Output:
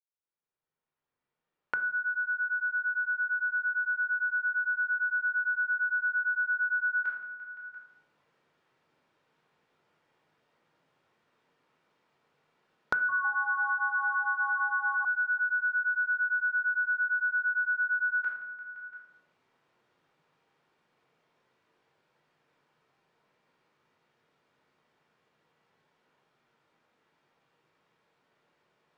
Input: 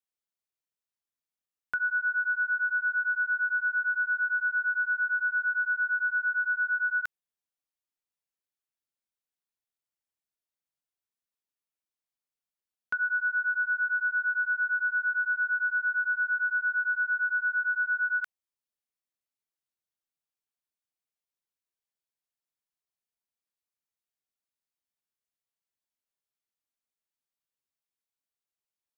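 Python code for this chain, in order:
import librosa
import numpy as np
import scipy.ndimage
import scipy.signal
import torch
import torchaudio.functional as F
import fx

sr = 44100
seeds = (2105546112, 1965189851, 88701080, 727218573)

y = fx.fade_in_head(x, sr, length_s=7.74)
y = scipy.signal.sosfilt(scipy.signal.bessel(2, 1600.0, 'lowpass', norm='mag', fs=sr, output='sos'), y)
y = fx.room_shoebox(y, sr, seeds[0], volume_m3=1000.0, walls='furnished', distance_m=4.5)
y = fx.echo_pitch(y, sr, ms=156, semitones=-5, count=2, db_per_echo=-6.0, at=(12.93, 15.05))
y = fx.echo_feedback(y, sr, ms=172, feedback_pct=53, wet_db=-21)
y = fx.band_squash(y, sr, depth_pct=100)
y = y * librosa.db_to_amplitude(-5.5)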